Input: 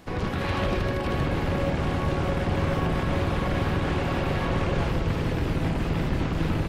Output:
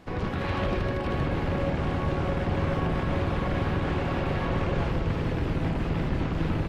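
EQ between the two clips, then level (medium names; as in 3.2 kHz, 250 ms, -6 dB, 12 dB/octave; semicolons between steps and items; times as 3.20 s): low-pass 3.6 kHz 6 dB/octave; -1.5 dB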